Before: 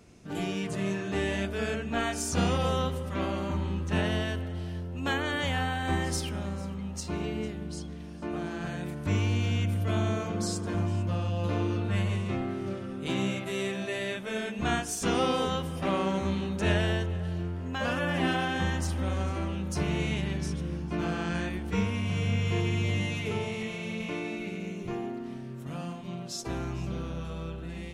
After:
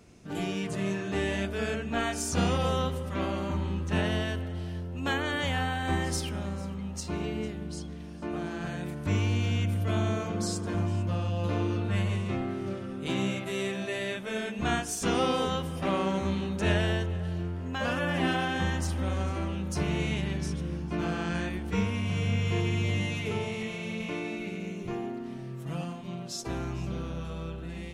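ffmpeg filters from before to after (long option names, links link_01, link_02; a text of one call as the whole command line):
ffmpeg -i in.wav -filter_complex "[0:a]asettb=1/sr,asplit=3[link_01][link_02][link_03];[link_01]atrim=end=25.384[link_04];[link_02]atrim=start=25.38:end=25.84,asetpts=PTS-STARTPTS,afade=type=in:duration=0.004:curve=qsin,afade=type=out:start_time=0.456:duration=0.004:curve=qsin,aecho=1:1:6.1:0.65,atrim=end_sample=20286[link_05];[link_03]atrim=start=25.836[link_06];[link_04][link_05]acrossfade=duration=0.004:curve1=hsin:curve2=qsin[link_07];[link_07][link_06]acrossfade=duration=0.004:curve1=qsin:curve2=hsin" out.wav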